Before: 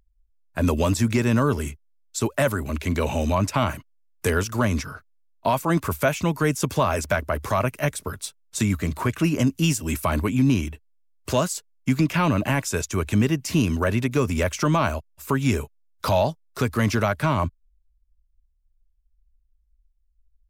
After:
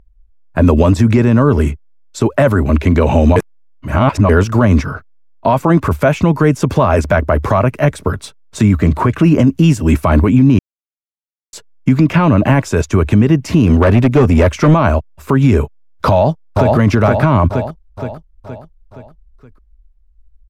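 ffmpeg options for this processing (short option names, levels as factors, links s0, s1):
-filter_complex "[0:a]asettb=1/sr,asplit=3[s0][s1][s2];[s0]atrim=end=13.664[s3];[s1]atrim=start=13.66:end=14.74,asetpts=PTS-STARTPTS,afade=t=in:d=0.004:c=qsin,afade=t=out:st=1.076:d=0.004:c=qsin,asoftclip=type=hard:threshold=0.1[s4];[s2]atrim=start=14.736[s5];[s3][s4]acrossfade=d=0.004:c1=hsin:c2=qsin[s6];[s6][s5]acrossfade=d=0.004:c1=qsin:c2=hsin,asplit=2[s7][s8];[s8]afade=t=in:st=16.09:d=0.01,afade=t=out:st=16.76:d=0.01,aecho=0:1:470|940|1410|1880|2350|2820:0.595662|0.297831|0.148916|0.0744578|0.0372289|0.0186144[s9];[s7][s9]amix=inputs=2:normalize=0,asplit=5[s10][s11][s12][s13][s14];[s10]atrim=end=3.362[s15];[s11]atrim=start=3.358:end=4.292,asetpts=PTS-STARTPTS,areverse[s16];[s12]atrim=start=4.288:end=10.59,asetpts=PTS-STARTPTS,afade=t=out:st=6.298:d=0.004:c=hsin[s17];[s13]atrim=start=10.59:end=11.53,asetpts=PTS-STARTPTS,volume=0[s18];[s14]atrim=start=11.53,asetpts=PTS-STARTPTS,afade=t=in:d=0.004:c=hsin[s19];[s15][s16]acrossfade=d=0.004:c1=hsin:c2=hsin[s20];[s17][s18][s19]concat=n=3:v=0:a=1[s21];[s20][s21]acrossfade=d=0.004:c1=hsin:c2=hsin,lowpass=f=1000:p=1,alimiter=level_in=7.08:limit=0.891:release=50:level=0:latency=1,volume=0.891"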